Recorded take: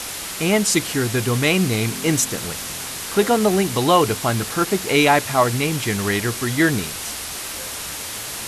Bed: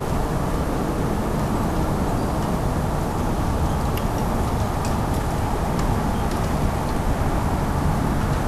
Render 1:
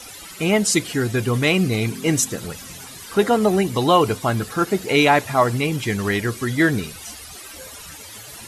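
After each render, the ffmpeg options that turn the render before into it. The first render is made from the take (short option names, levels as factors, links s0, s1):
-af "afftdn=nr=14:nf=-30"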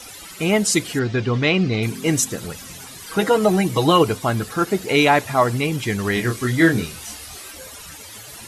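-filter_complex "[0:a]asettb=1/sr,asplit=3[s0][s1][s2];[s0]atrim=end=0.994[s3];[s1]atrim=start=0.99:end=1.83,asetpts=PTS-STARTPTS,afade=t=in:d=0.004:c=qsin,afade=t=out:st=0.836:d=0.004:c=qsin,lowpass=f=5200:w=0.5412,lowpass=f=5200:w=1.3066[s4];[s2]atrim=start=1.826[s5];[s3][s4]acrossfade=d=0.004:c1=hsin:c2=qsin[s6];[s6][s5]acrossfade=d=0.004:c1=qsin:c2=hsin,asettb=1/sr,asplit=3[s7][s8][s9];[s7]atrim=end=3.054[s10];[s8]atrim=start=3.05:end=4.03,asetpts=PTS-STARTPTS,afade=t=in:d=0.004:c=qsin,afade=t=out:st=0.976:d=0.004:c=qsin,aecho=1:1:6.3:0.65,atrim=end_sample=43218[s11];[s9]atrim=start=4.026[s12];[s10][s11]acrossfade=d=0.004:c1=hsin:c2=qsin[s13];[s13][s12]acrossfade=d=0.004:c1=qsin:c2=hsin,asettb=1/sr,asplit=3[s14][s15][s16];[s14]atrim=end=6.144[s17];[s15]atrim=start=6.14:end=7.51,asetpts=PTS-STARTPTS,afade=t=in:d=0.004:c=qsin,afade=t=out:st=1.366:d=0.004:c=qsin,asplit=2[s18][s19];[s19]adelay=24,volume=0.631[s20];[s18][s20]amix=inputs=2:normalize=0,atrim=end_sample=60417[s21];[s16]atrim=start=7.506[s22];[s17][s21]acrossfade=d=0.004:c1=hsin:c2=qsin[s23];[s23][s22]acrossfade=d=0.004:c1=qsin:c2=hsin"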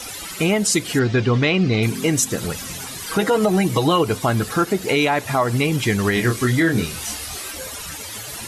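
-filter_complex "[0:a]asplit=2[s0][s1];[s1]acompressor=threshold=0.0562:ratio=6,volume=1[s2];[s0][s2]amix=inputs=2:normalize=0,alimiter=limit=0.398:level=0:latency=1:release=135"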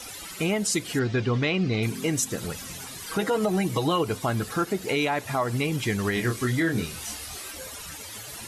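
-af "volume=0.447"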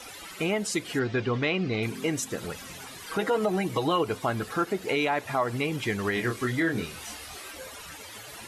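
-af "bass=f=250:g=-6,treble=f=4000:g=-7"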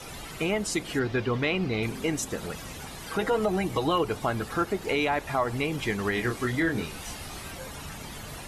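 -filter_complex "[1:a]volume=0.0841[s0];[0:a][s0]amix=inputs=2:normalize=0"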